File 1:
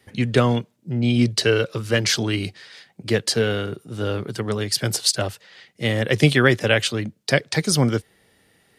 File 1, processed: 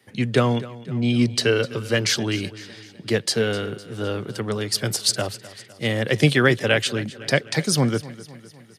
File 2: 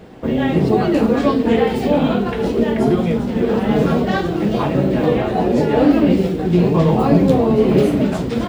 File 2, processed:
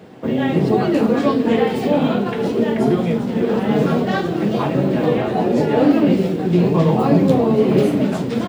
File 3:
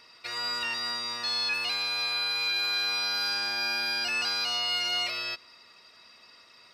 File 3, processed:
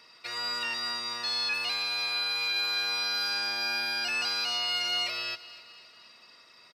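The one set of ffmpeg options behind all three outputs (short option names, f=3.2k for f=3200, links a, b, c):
-filter_complex "[0:a]highpass=f=100:w=0.5412,highpass=f=100:w=1.3066,asplit=2[a][b];[b]aecho=0:1:254|508|762|1016|1270:0.126|0.0692|0.0381|0.0209|0.0115[c];[a][c]amix=inputs=2:normalize=0,volume=-1dB"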